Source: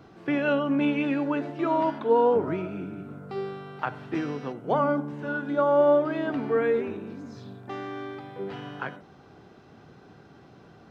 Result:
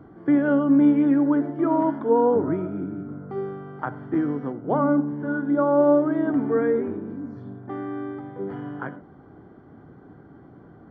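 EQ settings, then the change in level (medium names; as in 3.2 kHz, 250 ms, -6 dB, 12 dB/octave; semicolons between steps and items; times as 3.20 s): Savitzky-Golay filter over 41 samples; bass shelf 170 Hz +6 dB; peaking EQ 290 Hz +7 dB 0.52 oct; 0.0 dB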